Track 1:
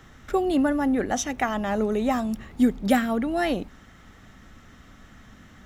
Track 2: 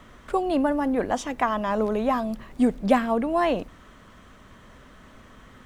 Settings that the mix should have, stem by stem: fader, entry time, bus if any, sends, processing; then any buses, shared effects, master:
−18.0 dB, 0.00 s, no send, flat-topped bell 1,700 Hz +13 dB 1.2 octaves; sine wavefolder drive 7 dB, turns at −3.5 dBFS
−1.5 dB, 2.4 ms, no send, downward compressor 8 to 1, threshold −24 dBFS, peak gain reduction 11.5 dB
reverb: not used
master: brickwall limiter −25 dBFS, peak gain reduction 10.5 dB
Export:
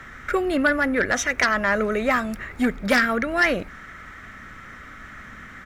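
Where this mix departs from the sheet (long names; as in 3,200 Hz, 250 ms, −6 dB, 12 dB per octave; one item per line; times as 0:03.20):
stem 1 −18.0 dB → −9.0 dB
master: missing brickwall limiter −25 dBFS, peak gain reduction 10.5 dB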